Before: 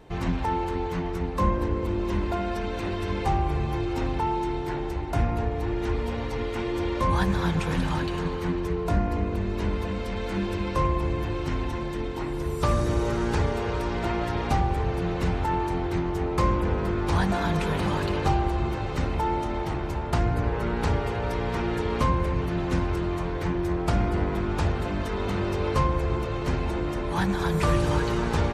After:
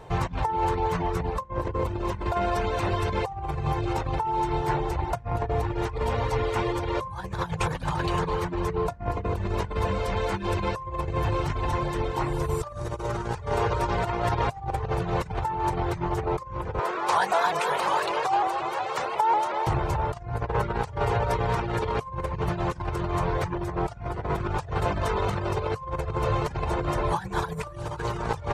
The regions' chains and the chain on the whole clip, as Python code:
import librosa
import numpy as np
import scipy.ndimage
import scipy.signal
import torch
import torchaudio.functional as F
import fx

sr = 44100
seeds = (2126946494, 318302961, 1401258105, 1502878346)

y = fx.chain(x, sr, fx.highpass(hz=510.0, slope=12),
    fx.vibrato_shape(shape='saw_up', rate_hz=5.5, depth_cents=100.0), at=(16.79, 19.67))
y = fx.over_compress(y, sr, threshold_db=-28.0, ratio=-0.5)
y = fx.dereverb_blind(y, sr, rt60_s=0.5)
y = fx.graphic_eq(y, sr, hz=(125, 250, 500, 1000, 8000), db=(8, -10, 5, 7, 4))